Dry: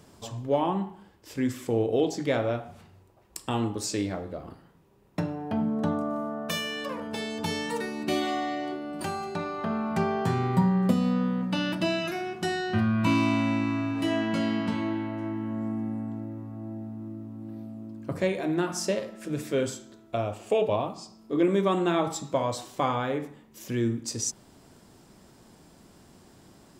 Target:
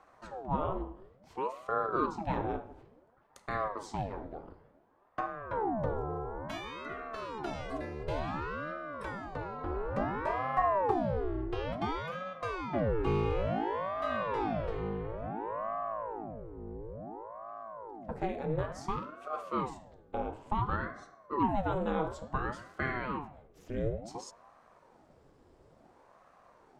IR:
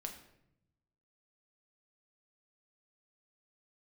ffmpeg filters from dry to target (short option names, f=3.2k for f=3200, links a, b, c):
-filter_complex "[0:a]aemphasis=mode=reproduction:type=75kf,asplit=2[a][b];[1:a]atrim=start_sample=2205,lowpass=2.1k[c];[b][c]afir=irnorm=-1:irlink=0,volume=-4dB[d];[a][d]amix=inputs=2:normalize=0,aeval=exprs='val(0)*sin(2*PI*530*n/s+530*0.75/0.57*sin(2*PI*0.57*n/s))':c=same,volume=-6.5dB"